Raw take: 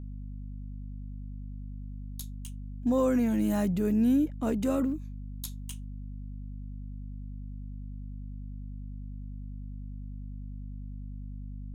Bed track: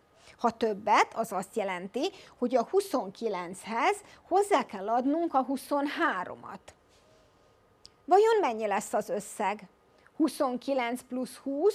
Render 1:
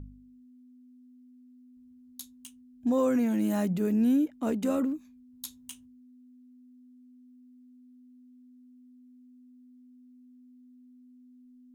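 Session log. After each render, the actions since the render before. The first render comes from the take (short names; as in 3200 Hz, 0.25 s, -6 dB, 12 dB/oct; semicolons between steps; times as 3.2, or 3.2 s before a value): de-hum 50 Hz, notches 4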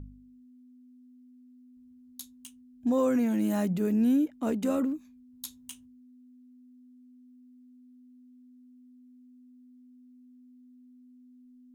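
nothing audible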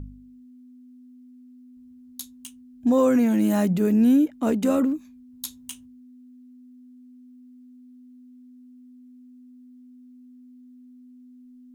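gain +6.5 dB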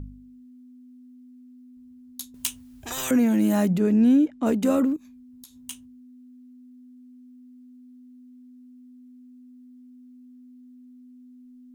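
2.34–3.11 spectral compressor 10:1; 3.78–4.46 air absorption 57 m; 4.96–5.56 compressor 5:1, threshold -44 dBFS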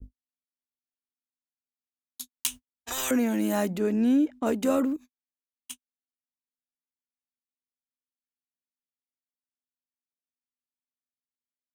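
gate -36 dBFS, range -60 dB; bell 150 Hz -14.5 dB 1 oct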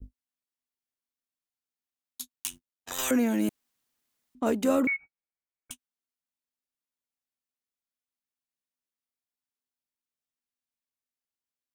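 2.36–2.99 AM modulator 91 Hz, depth 80%; 3.49–4.35 room tone; 4.87–5.71 inverted band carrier 2500 Hz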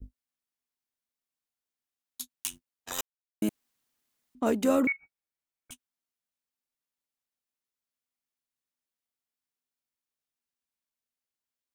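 3.01–3.42 mute; 4.92–5.72 compressor, threshold -44 dBFS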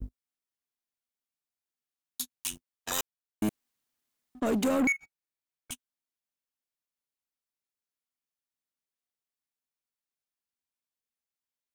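limiter -21.5 dBFS, peak gain reduction 8 dB; sample leveller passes 2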